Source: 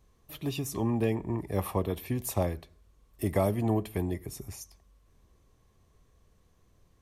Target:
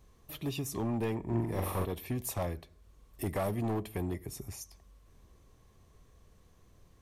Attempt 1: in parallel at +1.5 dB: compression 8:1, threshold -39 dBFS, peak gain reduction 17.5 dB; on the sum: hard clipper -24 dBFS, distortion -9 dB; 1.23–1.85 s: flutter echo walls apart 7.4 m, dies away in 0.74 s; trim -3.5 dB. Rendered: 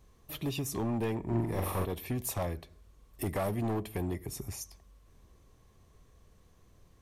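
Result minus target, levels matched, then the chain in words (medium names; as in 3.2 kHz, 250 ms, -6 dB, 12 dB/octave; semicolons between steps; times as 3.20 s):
compression: peak gain reduction -9 dB
in parallel at +1.5 dB: compression 8:1, threshold -49.5 dBFS, peak gain reduction 27 dB; on the sum: hard clipper -24 dBFS, distortion -10 dB; 1.23–1.85 s: flutter echo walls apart 7.4 m, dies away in 0.74 s; trim -3.5 dB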